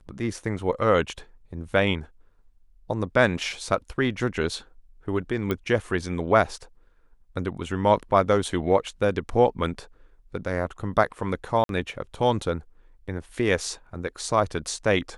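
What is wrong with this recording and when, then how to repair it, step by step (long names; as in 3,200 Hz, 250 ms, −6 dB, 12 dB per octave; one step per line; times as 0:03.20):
0:05.51: click −14 dBFS
0:11.64–0:11.69: drop-out 52 ms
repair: click removal
repair the gap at 0:11.64, 52 ms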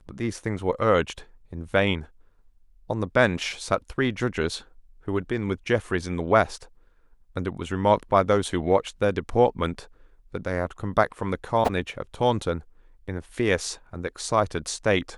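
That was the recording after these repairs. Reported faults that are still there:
none of them is left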